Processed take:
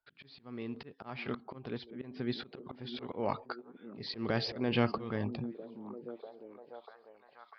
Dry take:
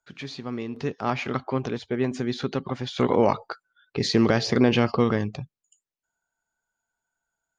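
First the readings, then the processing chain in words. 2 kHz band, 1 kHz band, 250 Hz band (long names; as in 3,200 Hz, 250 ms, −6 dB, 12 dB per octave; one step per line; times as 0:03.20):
−10.5 dB, −12.0 dB, −12.5 dB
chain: volume swells 294 ms
downsampling to 11,025 Hz
echo through a band-pass that steps 646 ms, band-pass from 250 Hz, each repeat 0.7 octaves, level −8 dB
level −6.5 dB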